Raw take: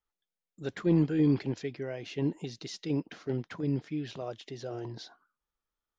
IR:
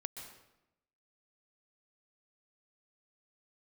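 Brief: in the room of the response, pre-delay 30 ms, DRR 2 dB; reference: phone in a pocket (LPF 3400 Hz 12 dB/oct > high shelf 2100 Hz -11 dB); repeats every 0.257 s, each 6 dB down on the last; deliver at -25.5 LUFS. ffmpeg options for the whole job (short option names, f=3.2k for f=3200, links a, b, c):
-filter_complex "[0:a]aecho=1:1:257|514|771|1028|1285|1542:0.501|0.251|0.125|0.0626|0.0313|0.0157,asplit=2[a][b];[1:a]atrim=start_sample=2205,adelay=30[c];[b][c]afir=irnorm=-1:irlink=0,volume=0dB[d];[a][d]amix=inputs=2:normalize=0,lowpass=3.4k,highshelf=f=2.1k:g=-11,volume=3.5dB"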